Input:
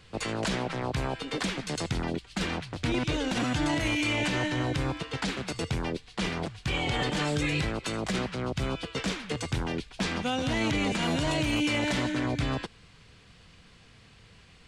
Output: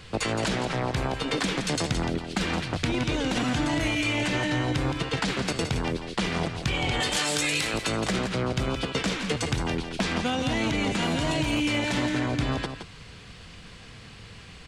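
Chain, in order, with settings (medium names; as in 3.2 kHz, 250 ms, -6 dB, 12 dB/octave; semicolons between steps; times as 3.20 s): 7.00–7.74 s: RIAA curve recording; compression, threshold -33 dBFS, peak gain reduction 9 dB; delay 169 ms -8.5 dB; trim +9 dB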